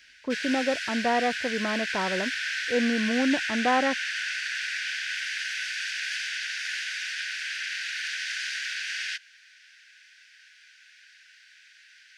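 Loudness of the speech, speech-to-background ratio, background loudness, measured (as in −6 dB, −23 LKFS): −28.0 LKFS, 2.0 dB, −30.0 LKFS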